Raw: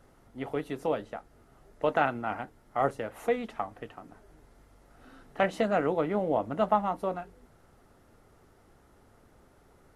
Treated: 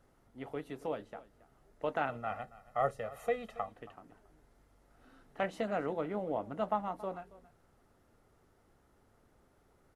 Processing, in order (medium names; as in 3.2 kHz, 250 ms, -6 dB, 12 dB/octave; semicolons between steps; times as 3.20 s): 2.09–3.69 s: comb 1.6 ms, depth 86%; on a send: delay 276 ms -19 dB; on the sum: trim -8 dB